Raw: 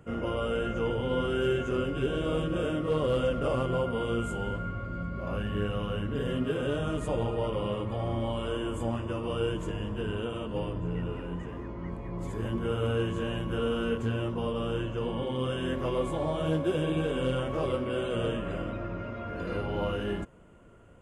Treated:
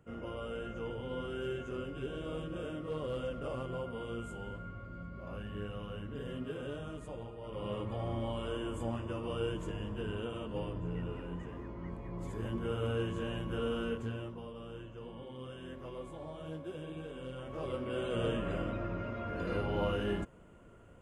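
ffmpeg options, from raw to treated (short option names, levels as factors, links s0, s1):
-af "volume=5.01,afade=t=out:st=6.62:d=0.79:silence=0.473151,afade=t=in:st=7.41:d=0.35:silence=0.266073,afade=t=out:st=13.78:d=0.68:silence=0.334965,afade=t=in:st=17.35:d=1.08:silence=0.223872"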